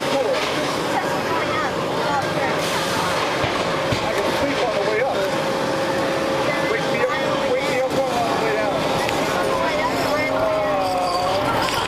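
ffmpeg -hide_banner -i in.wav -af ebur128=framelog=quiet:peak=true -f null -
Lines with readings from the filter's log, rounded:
Integrated loudness:
  I:         -20.4 LUFS
  Threshold: -30.4 LUFS
Loudness range:
  LRA:         0.7 LU
  Threshold: -40.4 LUFS
  LRA low:   -20.8 LUFS
  LRA high:  -20.1 LUFS
True peak:
  Peak:       -5.9 dBFS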